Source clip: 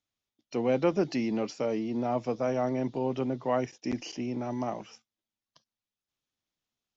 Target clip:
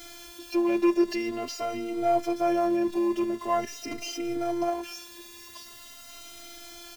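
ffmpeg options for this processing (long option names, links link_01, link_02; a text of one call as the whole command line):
ffmpeg -i in.wav -filter_complex "[0:a]aeval=exprs='val(0)+0.5*0.01*sgn(val(0))':channel_layout=same,afftfilt=real='hypot(re,im)*cos(PI*b)':imag='0':win_size=512:overlap=0.75,asplit=2[link_01][link_02];[link_02]adelay=3.8,afreqshift=0.45[link_03];[link_01][link_03]amix=inputs=2:normalize=1,volume=9dB" out.wav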